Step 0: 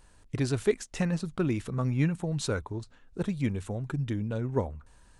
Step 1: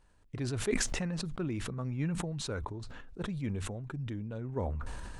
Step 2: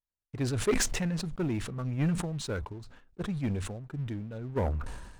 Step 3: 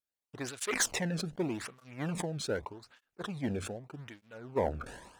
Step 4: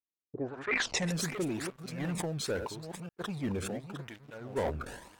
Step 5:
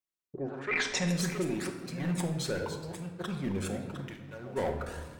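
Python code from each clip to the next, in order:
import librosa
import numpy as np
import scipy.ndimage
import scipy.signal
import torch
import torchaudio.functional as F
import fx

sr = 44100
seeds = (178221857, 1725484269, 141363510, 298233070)

y1 = fx.high_shelf(x, sr, hz=5000.0, db=-8.5)
y1 = fx.sustainer(y1, sr, db_per_s=23.0)
y1 = F.gain(torch.from_numpy(y1), -8.0).numpy()
y2 = fx.leveller(y1, sr, passes=3)
y2 = fx.upward_expand(y2, sr, threshold_db=-39.0, expansion=2.5)
y3 = fx.flanger_cancel(y2, sr, hz=0.83, depth_ms=1.1)
y3 = F.gain(torch.from_numpy(y3), 3.0).numpy()
y4 = fx.reverse_delay(y3, sr, ms=515, wet_db=-9.5)
y4 = fx.leveller(y4, sr, passes=2)
y4 = fx.filter_sweep_lowpass(y4, sr, from_hz=350.0, to_hz=16000.0, start_s=0.32, end_s=1.17, q=2.5)
y4 = F.gain(torch.from_numpy(y4), -5.5).numpy()
y5 = fx.room_shoebox(y4, sr, seeds[0], volume_m3=920.0, walls='mixed', distance_m=1.0)
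y5 = F.gain(torch.from_numpy(y5), -1.0).numpy()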